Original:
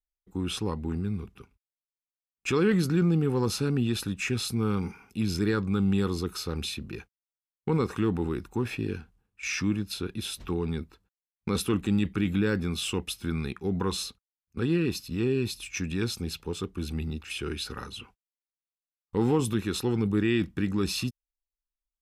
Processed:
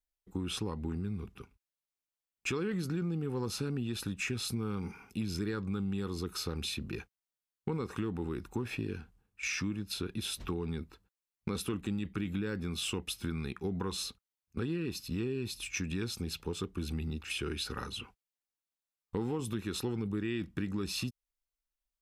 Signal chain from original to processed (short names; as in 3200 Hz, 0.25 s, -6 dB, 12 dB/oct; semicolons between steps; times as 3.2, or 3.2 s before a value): compressor 5:1, threshold -32 dBFS, peak gain reduction 12 dB